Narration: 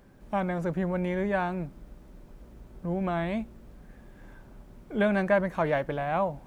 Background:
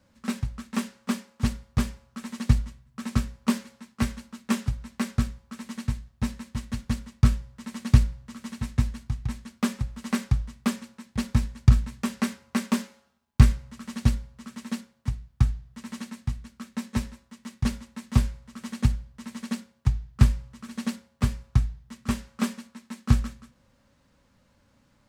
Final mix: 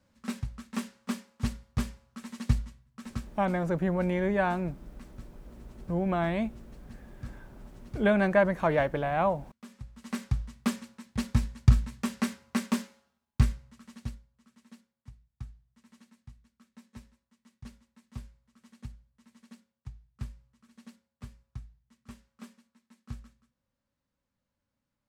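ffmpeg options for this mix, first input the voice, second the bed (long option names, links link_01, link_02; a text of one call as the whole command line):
ffmpeg -i stem1.wav -i stem2.wav -filter_complex "[0:a]adelay=3050,volume=1dB[link_01];[1:a]volume=15dB,afade=type=out:start_time=2.74:duration=0.77:silence=0.125893,afade=type=in:start_time=9.64:duration=0.97:silence=0.0944061,afade=type=out:start_time=12.58:duration=1.68:silence=0.125893[link_02];[link_01][link_02]amix=inputs=2:normalize=0" out.wav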